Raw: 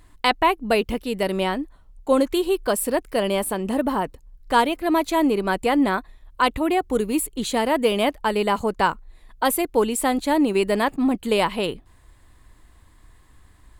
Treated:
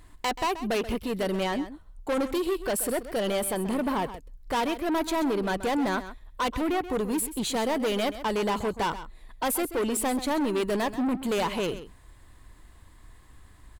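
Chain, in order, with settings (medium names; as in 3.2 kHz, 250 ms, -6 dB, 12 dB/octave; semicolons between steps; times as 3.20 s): saturation -23.5 dBFS, distortion -7 dB; delay 131 ms -13 dB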